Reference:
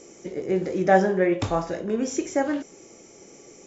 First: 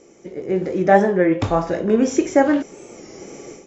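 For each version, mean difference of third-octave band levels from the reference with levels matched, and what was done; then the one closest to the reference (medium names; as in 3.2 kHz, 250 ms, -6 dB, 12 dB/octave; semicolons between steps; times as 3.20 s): 3.0 dB: treble shelf 4.7 kHz -10 dB; level rider gain up to 14 dB; warped record 33 1/3 rpm, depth 100 cents; trim -1 dB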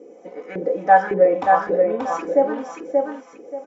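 8.5 dB: comb 4 ms, depth 95%; LFO band-pass saw up 1.8 Hz 370–1600 Hz; feedback delay 581 ms, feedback 24%, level -3.5 dB; trim +7.5 dB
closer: first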